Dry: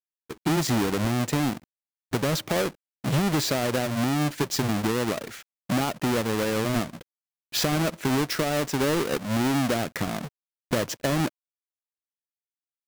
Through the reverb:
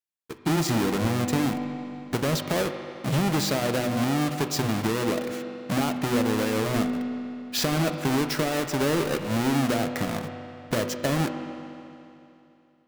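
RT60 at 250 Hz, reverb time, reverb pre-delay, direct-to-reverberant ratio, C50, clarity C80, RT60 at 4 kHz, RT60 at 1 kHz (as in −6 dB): 2.8 s, 2.8 s, 4 ms, 6.0 dB, 7.5 dB, 8.0 dB, 2.7 s, 2.8 s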